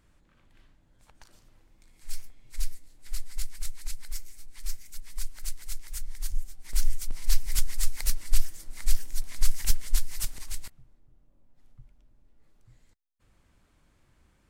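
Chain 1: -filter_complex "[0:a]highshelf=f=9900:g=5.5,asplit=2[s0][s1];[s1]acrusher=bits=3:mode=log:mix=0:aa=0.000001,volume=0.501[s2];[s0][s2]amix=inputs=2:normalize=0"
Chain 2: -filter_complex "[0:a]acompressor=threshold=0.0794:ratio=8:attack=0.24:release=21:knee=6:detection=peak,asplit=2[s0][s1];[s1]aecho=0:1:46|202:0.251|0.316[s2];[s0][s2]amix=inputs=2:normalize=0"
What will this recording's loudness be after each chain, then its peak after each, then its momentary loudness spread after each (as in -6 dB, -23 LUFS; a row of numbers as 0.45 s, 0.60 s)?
-31.0 LUFS, -40.0 LUFS; -3.0 dBFS, -18.0 dBFS; 14 LU, 17 LU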